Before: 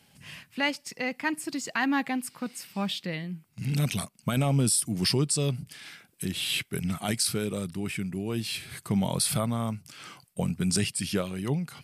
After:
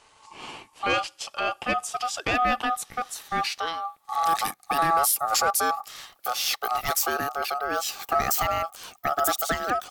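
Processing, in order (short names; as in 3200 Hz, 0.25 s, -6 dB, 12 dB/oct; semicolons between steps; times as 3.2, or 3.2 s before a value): speed glide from 65% -> 174%; sine folder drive 3 dB, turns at -13.5 dBFS; ring modulator 990 Hz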